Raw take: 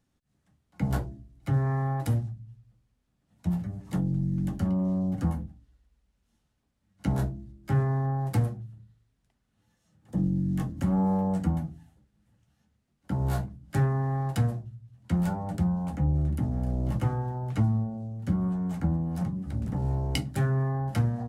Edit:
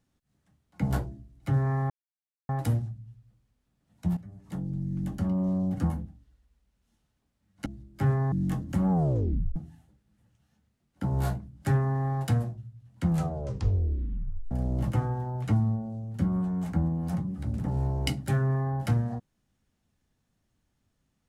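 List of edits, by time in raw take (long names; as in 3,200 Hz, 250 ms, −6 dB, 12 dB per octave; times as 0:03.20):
0:01.90: splice in silence 0.59 s
0:03.58–0:04.90: fade in, from −12.5 dB
0:07.07–0:07.35: remove
0:08.01–0:10.40: remove
0:10.98: tape stop 0.66 s
0:15.13: tape stop 1.46 s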